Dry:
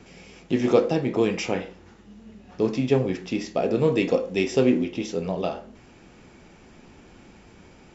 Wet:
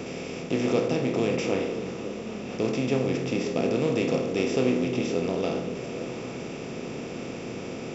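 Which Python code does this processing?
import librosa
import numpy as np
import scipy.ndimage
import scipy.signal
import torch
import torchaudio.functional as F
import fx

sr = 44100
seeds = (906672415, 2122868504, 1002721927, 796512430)

p1 = fx.bin_compress(x, sr, power=0.4)
p2 = fx.peak_eq(p1, sr, hz=670.0, db=-3.0, octaves=2.6)
p3 = p2 + fx.echo_stepped(p2, sr, ms=269, hz=160.0, octaves=1.4, feedback_pct=70, wet_db=-4.5, dry=0)
y = p3 * 10.0 ** (-7.0 / 20.0)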